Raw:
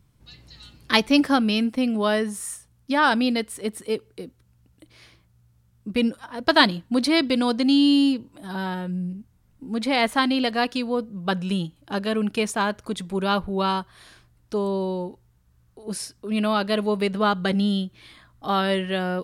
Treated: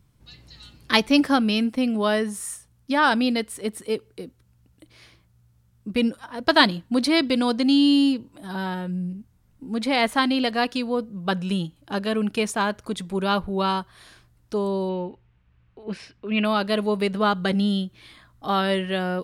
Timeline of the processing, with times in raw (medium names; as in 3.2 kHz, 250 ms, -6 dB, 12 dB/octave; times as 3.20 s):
14.89–16.45 s: resonant low-pass 2.6 kHz, resonance Q 2.6